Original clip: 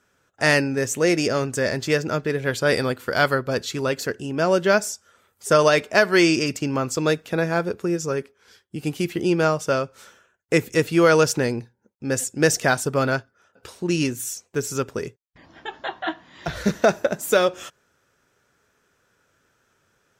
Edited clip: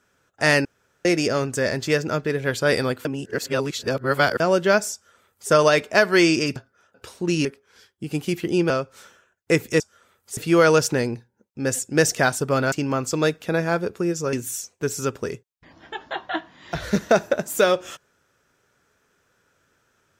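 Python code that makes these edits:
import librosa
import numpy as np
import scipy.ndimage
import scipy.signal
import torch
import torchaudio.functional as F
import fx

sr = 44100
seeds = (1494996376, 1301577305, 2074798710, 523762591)

y = fx.edit(x, sr, fx.room_tone_fill(start_s=0.65, length_s=0.4),
    fx.reverse_span(start_s=3.05, length_s=1.35),
    fx.duplicate(start_s=4.93, length_s=0.57, to_s=10.82),
    fx.swap(start_s=6.56, length_s=1.61, other_s=13.17, other_length_s=0.89),
    fx.cut(start_s=9.42, length_s=0.3), tone=tone)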